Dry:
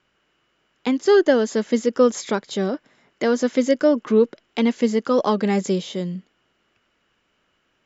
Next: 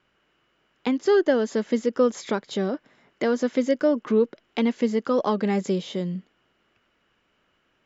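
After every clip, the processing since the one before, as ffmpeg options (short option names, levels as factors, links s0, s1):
-filter_complex "[0:a]highshelf=f=6800:g=-11,asplit=2[s0][s1];[s1]acompressor=threshold=0.0562:ratio=6,volume=1[s2];[s0][s2]amix=inputs=2:normalize=0,volume=0.501"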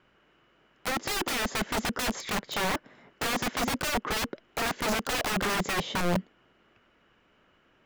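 -af "aeval=exprs='(mod(20*val(0)+1,2)-1)/20':c=same,highshelf=f=3300:g=-8,volume=1.78"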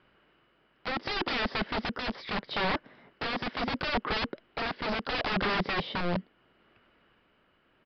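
-af "tremolo=f=0.73:d=0.33,aresample=11025,aresample=44100"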